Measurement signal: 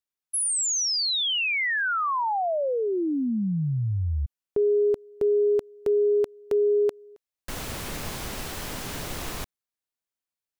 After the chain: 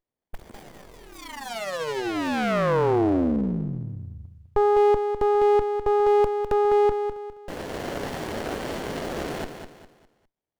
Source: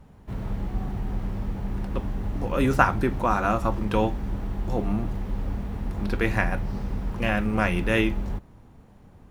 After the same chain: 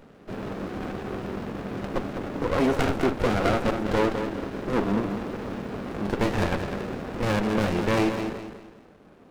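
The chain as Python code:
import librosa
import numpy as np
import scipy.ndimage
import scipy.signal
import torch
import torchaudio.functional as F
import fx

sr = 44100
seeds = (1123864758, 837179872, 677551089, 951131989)

p1 = fx.tracing_dist(x, sr, depth_ms=0.043)
p2 = scipy.signal.sosfilt(scipy.signal.butter(2, 370.0, 'highpass', fs=sr, output='sos'), p1)
p3 = fx.high_shelf(p2, sr, hz=4500.0, db=-10.5)
p4 = fx.rider(p3, sr, range_db=4, speed_s=0.5)
p5 = p3 + (p4 * librosa.db_to_amplitude(-2.5))
p6 = 10.0 ** (-17.5 / 20.0) * np.tanh(p5 / 10.0 ** (-17.5 / 20.0))
p7 = p6 + fx.echo_feedback(p6, sr, ms=203, feedback_pct=35, wet_db=-8, dry=0)
p8 = fx.running_max(p7, sr, window=33)
y = p8 * librosa.db_to_amplitude(5.0)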